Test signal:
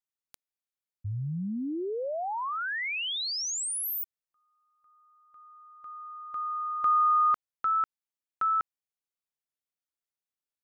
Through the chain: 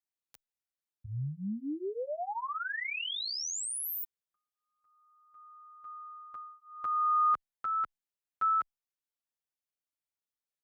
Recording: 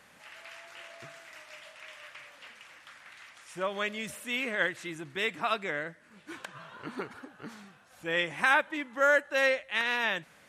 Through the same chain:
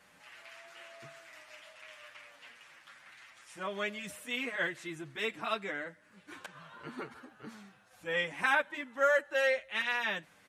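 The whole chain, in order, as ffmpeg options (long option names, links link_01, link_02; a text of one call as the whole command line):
ffmpeg -i in.wav -filter_complex "[0:a]asplit=2[link_01][link_02];[link_02]adelay=7.9,afreqshift=-0.48[link_03];[link_01][link_03]amix=inputs=2:normalize=1,volume=-1dB" out.wav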